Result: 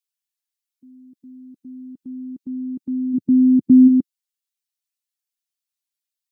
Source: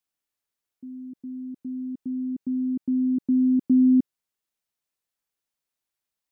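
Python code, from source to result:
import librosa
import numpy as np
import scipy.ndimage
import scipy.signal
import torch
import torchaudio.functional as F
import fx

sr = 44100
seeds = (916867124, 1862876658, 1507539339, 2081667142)

y = fx.bin_expand(x, sr, power=1.5)
y = fx.peak_eq(y, sr, hz=110.0, db=12.0, octaves=2.2, at=(3.13, 3.87), fade=0.02)
y = F.gain(torch.from_numpy(y), 3.0).numpy()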